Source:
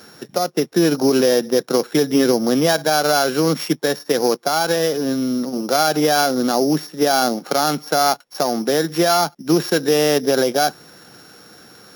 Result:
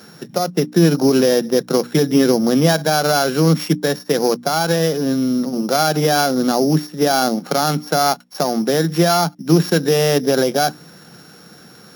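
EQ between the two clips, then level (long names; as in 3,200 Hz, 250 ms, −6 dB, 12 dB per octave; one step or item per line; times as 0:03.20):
parametric band 170 Hz +10.5 dB 0.74 octaves
mains-hum notches 60/120/180/240/300 Hz
0.0 dB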